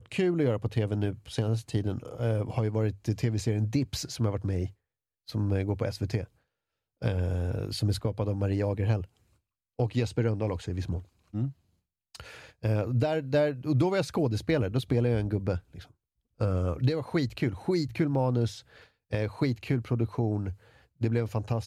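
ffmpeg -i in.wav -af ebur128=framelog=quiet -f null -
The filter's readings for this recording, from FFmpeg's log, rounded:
Integrated loudness:
  I:         -29.8 LUFS
  Threshold: -40.2 LUFS
Loudness range:
  LRA:         4.5 LU
  Threshold: -50.5 LUFS
  LRA low:   -32.8 LUFS
  LRA high:  -28.3 LUFS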